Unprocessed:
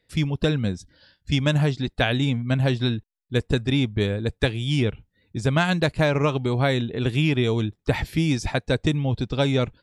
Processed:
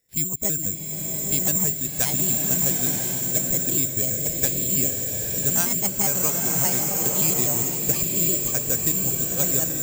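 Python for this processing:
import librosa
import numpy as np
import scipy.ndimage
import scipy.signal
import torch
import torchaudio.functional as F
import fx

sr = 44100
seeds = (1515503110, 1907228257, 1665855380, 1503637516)

y = fx.pitch_trill(x, sr, semitones=4.5, every_ms=82)
y = (np.kron(scipy.signal.resample_poly(y, 1, 6), np.eye(6)[0]) * 6)[:len(y)]
y = fx.rev_bloom(y, sr, seeds[0], attack_ms=990, drr_db=0.5)
y = F.gain(torch.from_numpy(y), -9.5).numpy()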